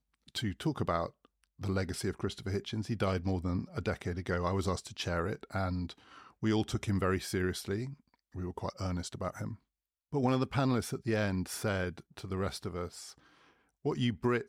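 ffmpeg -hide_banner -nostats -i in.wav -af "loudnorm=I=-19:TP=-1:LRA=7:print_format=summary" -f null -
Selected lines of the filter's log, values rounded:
Input Integrated:    -34.9 LUFS
Input True Peak:     -16.3 dBTP
Input LRA:             2.6 LU
Input Threshold:     -45.5 LUFS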